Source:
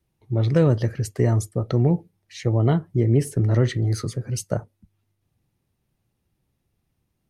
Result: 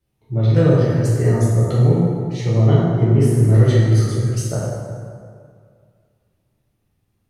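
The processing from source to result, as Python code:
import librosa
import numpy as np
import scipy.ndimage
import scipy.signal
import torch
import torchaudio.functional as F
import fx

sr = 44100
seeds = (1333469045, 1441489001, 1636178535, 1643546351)

y = fx.rev_plate(x, sr, seeds[0], rt60_s=2.1, hf_ratio=0.6, predelay_ms=0, drr_db=-7.5)
y = y * librosa.db_to_amplitude(-3.5)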